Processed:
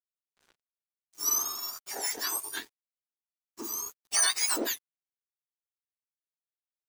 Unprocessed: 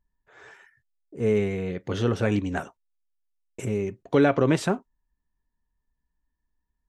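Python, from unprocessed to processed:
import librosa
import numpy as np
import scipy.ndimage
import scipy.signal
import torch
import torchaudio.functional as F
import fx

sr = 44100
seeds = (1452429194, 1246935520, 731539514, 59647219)

y = fx.octave_mirror(x, sr, pivot_hz=1600.0)
y = np.sign(y) * np.maximum(np.abs(y) - 10.0 ** (-47.0 / 20.0), 0.0)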